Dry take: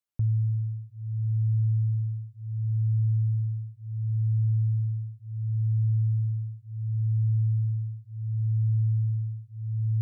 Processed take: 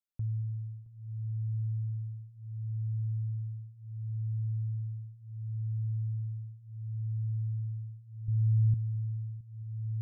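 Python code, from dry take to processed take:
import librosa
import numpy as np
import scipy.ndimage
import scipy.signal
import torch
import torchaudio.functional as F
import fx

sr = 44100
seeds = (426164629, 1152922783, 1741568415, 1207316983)

y = fx.low_shelf(x, sr, hz=170.0, db=12.0, at=(8.28, 8.74))
y = fx.echo_heads(y, sr, ms=223, heads='first and third', feedback_pct=60, wet_db=-21.5)
y = y * librosa.db_to_amplitude(-8.5)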